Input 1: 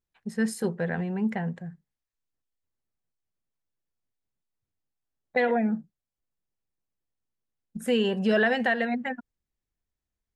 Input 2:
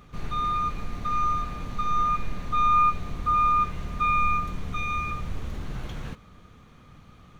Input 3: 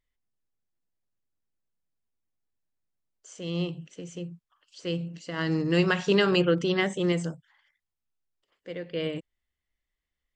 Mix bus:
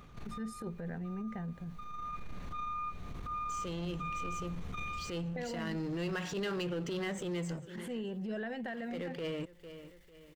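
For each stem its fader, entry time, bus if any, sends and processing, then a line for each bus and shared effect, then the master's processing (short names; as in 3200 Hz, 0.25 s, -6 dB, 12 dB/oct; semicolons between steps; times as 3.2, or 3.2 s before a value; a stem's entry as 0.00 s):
-10.0 dB, 0.00 s, no send, no echo send, low shelf 380 Hz +10 dB
-4.5 dB, 0.00 s, no send, no echo send, vocal rider within 4 dB; auto duck -17 dB, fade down 0.50 s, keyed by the first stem
-1.0 dB, 0.25 s, no send, echo send -23 dB, power-law curve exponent 0.7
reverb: off
echo: feedback echo 0.449 s, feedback 44%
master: transient shaper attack -12 dB, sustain +1 dB; compressor 3:1, threshold -39 dBFS, peak gain reduction 15 dB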